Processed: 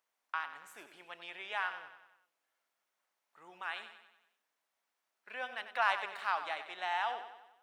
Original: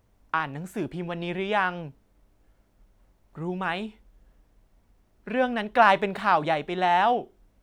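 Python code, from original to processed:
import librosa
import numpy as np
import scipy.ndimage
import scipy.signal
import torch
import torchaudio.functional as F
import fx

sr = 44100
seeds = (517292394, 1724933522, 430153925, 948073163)

p1 = scipy.signal.sosfilt(scipy.signal.butter(2, 1100.0, 'highpass', fs=sr, output='sos'), x)
p2 = p1 + fx.echo_feedback(p1, sr, ms=94, feedback_pct=52, wet_db=-11, dry=0)
y = p2 * 10.0 ** (-8.5 / 20.0)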